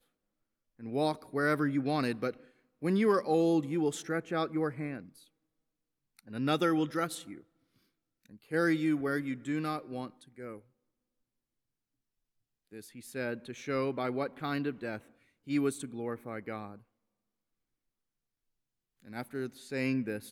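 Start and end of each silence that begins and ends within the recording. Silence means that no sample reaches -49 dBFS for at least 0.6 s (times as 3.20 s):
5.22–6.19 s
7.41–8.26 s
10.59–12.72 s
16.80–19.00 s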